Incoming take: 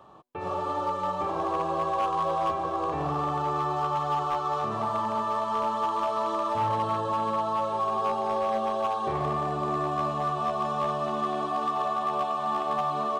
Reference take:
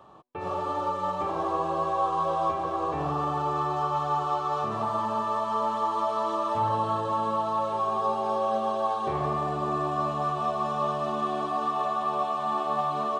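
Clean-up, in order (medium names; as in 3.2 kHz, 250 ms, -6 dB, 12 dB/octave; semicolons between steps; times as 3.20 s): clip repair -21 dBFS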